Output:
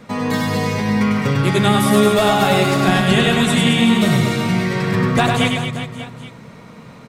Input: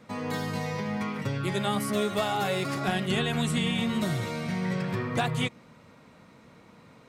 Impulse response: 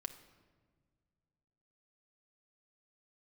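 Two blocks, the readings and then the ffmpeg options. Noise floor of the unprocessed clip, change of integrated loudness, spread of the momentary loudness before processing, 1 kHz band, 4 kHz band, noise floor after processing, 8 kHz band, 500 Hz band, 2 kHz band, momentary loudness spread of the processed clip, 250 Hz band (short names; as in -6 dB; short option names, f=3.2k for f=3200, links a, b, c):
-55 dBFS, +13.0 dB, 5 LU, +13.0 dB, +13.0 dB, -40 dBFS, +13.0 dB, +13.0 dB, +13.0 dB, 8 LU, +14.0 dB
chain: -filter_complex "[0:a]aecho=1:1:100|225|381.2|576.6|820.7:0.631|0.398|0.251|0.158|0.1,asplit=2[a][b];[1:a]atrim=start_sample=2205,lowshelf=f=89:g=10[c];[b][c]afir=irnorm=-1:irlink=0,volume=1.5dB[d];[a][d]amix=inputs=2:normalize=0,volume=5.5dB"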